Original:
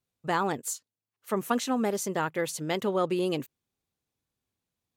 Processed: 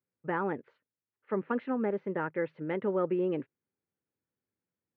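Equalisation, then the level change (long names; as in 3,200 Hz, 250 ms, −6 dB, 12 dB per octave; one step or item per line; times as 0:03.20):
high-frequency loss of the air 280 metres
loudspeaker in its box 140–2,100 Hz, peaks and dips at 140 Hz −4 dB, 240 Hz −3 dB, 730 Hz −6 dB, 1,100 Hz −7 dB
notch filter 690 Hz, Q 12
0.0 dB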